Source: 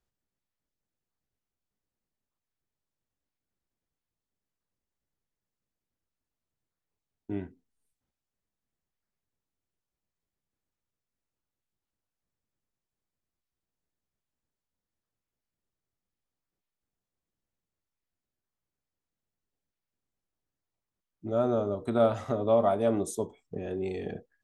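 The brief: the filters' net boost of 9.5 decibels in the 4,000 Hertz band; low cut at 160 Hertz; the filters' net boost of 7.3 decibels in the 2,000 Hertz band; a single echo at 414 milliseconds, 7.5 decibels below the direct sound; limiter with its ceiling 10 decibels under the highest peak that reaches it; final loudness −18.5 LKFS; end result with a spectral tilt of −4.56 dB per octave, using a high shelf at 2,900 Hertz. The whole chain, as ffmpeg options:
ffmpeg -i in.wav -af "highpass=160,equalizer=frequency=2000:width_type=o:gain=7,highshelf=frequency=2900:gain=3,equalizer=frequency=4000:width_type=o:gain=7,alimiter=limit=-21dB:level=0:latency=1,aecho=1:1:414:0.422,volume=13.5dB" out.wav

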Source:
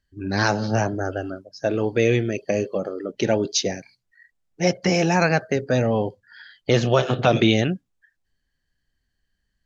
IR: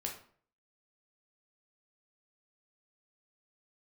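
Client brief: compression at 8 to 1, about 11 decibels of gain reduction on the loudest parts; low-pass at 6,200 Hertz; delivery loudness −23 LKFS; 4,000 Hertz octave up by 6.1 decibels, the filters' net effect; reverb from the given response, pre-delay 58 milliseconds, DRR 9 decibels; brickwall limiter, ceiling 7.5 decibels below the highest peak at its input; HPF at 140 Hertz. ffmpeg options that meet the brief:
-filter_complex "[0:a]highpass=140,lowpass=6200,equalizer=frequency=4000:width_type=o:gain=8.5,acompressor=threshold=-23dB:ratio=8,alimiter=limit=-17.5dB:level=0:latency=1,asplit=2[link_01][link_02];[1:a]atrim=start_sample=2205,adelay=58[link_03];[link_02][link_03]afir=irnorm=-1:irlink=0,volume=-9.5dB[link_04];[link_01][link_04]amix=inputs=2:normalize=0,volume=6.5dB"

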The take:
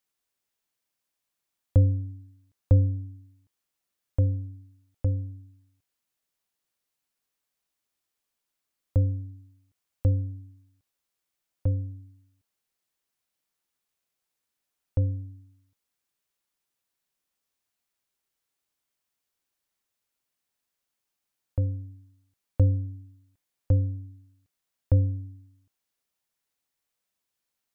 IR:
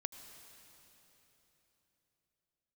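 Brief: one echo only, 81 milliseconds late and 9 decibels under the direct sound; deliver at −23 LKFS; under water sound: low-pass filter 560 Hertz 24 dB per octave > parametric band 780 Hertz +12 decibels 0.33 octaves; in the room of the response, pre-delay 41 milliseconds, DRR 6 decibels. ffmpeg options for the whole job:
-filter_complex "[0:a]aecho=1:1:81:0.355,asplit=2[link_01][link_02];[1:a]atrim=start_sample=2205,adelay=41[link_03];[link_02][link_03]afir=irnorm=-1:irlink=0,volume=-4dB[link_04];[link_01][link_04]amix=inputs=2:normalize=0,lowpass=frequency=560:width=0.5412,lowpass=frequency=560:width=1.3066,equalizer=frequency=780:width_type=o:width=0.33:gain=12,volume=2dB"

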